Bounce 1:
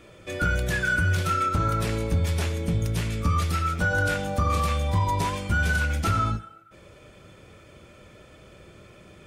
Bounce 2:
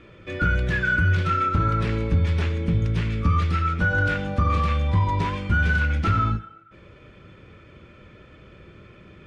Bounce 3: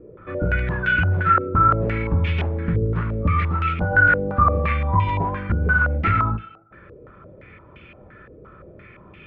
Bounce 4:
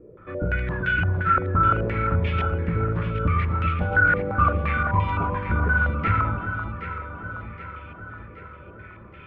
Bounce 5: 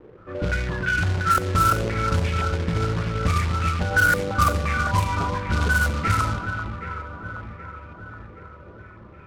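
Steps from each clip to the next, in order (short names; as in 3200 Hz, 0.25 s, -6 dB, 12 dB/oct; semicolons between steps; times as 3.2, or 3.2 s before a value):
LPF 2800 Hz 12 dB/oct; bell 690 Hz -8 dB 0.9 oct; gain +3.5 dB
stepped low-pass 5.8 Hz 460–2700 Hz
echo with dull and thin repeats by turns 0.386 s, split 1200 Hz, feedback 73%, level -6.5 dB; gain -3.5 dB
companded quantiser 4-bit; low-pass opened by the level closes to 1300 Hz, open at -14.5 dBFS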